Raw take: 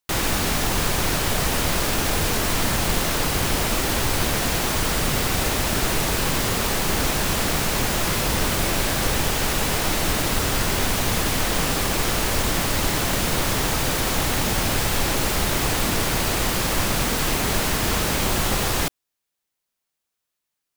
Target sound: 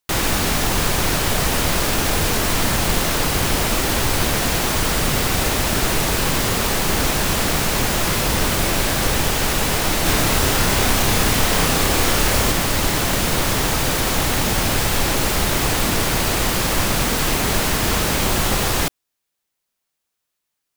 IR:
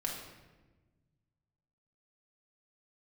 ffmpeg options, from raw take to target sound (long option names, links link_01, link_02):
-filter_complex "[0:a]asettb=1/sr,asplit=3[link_01][link_02][link_03];[link_01]atrim=end=10.034[link_04];[link_02]atrim=start=10.03:end=12.52,asetpts=PTS-STARTPTS,afade=type=in:duration=0.004:curve=qsin,afade=type=out:start_time=2.486:duration=0.004:curve=qsin,asplit=2[link_05][link_06];[link_06]adelay=30,volume=-2.5dB[link_07];[link_05][link_07]amix=inputs=2:normalize=0,atrim=end_sample=109809[link_08];[link_03]atrim=start=12.516[link_09];[link_04][link_08]acrossfade=duration=0.004:curve1=hsin:curve2=qsin[link_10];[link_10][link_09]acrossfade=duration=0.004:curve1=qsin:curve2=hsin,volume=3dB"